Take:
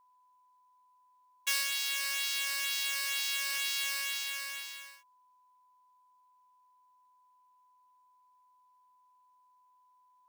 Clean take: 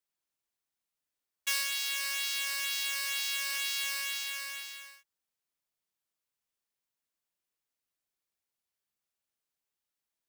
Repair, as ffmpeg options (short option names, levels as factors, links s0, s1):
-af "bandreject=f=1000:w=30"